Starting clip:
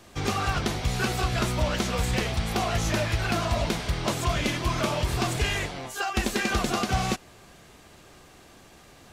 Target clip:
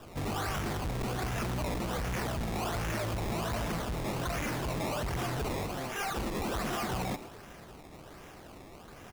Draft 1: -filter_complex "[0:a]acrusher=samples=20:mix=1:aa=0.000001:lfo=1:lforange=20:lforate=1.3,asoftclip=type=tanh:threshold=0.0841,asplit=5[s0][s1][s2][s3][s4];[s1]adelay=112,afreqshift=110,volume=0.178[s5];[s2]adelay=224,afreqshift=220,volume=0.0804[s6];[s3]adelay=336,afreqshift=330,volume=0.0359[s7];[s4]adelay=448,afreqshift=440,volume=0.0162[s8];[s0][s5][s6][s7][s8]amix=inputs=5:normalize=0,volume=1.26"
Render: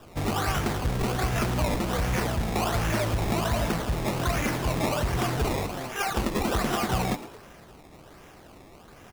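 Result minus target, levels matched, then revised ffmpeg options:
saturation: distortion -10 dB
-filter_complex "[0:a]acrusher=samples=20:mix=1:aa=0.000001:lfo=1:lforange=20:lforate=1.3,asoftclip=type=tanh:threshold=0.0211,asplit=5[s0][s1][s2][s3][s4];[s1]adelay=112,afreqshift=110,volume=0.178[s5];[s2]adelay=224,afreqshift=220,volume=0.0804[s6];[s3]adelay=336,afreqshift=330,volume=0.0359[s7];[s4]adelay=448,afreqshift=440,volume=0.0162[s8];[s0][s5][s6][s7][s8]amix=inputs=5:normalize=0,volume=1.26"

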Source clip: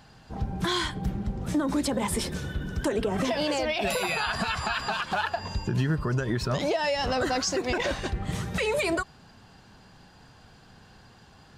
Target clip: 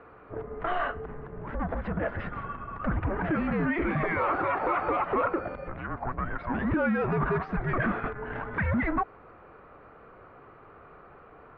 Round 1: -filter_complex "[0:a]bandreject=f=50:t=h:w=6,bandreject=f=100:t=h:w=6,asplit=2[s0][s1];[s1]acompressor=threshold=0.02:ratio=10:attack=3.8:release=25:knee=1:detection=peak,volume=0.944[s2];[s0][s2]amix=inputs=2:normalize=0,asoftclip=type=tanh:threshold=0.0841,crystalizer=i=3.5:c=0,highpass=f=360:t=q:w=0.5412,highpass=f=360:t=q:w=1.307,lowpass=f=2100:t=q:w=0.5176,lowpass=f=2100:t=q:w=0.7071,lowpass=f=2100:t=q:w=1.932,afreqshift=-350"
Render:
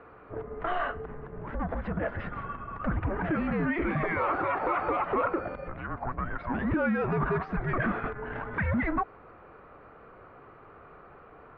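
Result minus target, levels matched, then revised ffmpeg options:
compression: peak gain reduction +5.5 dB
-filter_complex "[0:a]bandreject=f=50:t=h:w=6,bandreject=f=100:t=h:w=6,asplit=2[s0][s1];[s1]acompressor=threshold=0.0398:ratio=10:attack=3.8:release=25:knee=1:detection=peak,volume=0.944[s2];[s0][s2]amix=inputs=2:normalize=0,asoftclip=type=tanh:threshold=0.0841,crystalizer=i=3.5:c=0,highpass=f=360:t=q:w=0.5412,highpass=f=360:t=q:w=1.307,lowpass=f=2100:t=q:w=0.5176,lowpass=f=2100:t=q:w=0.7071,lowpass=f=2100:t=q:w=1.932,afreqshift=-350"

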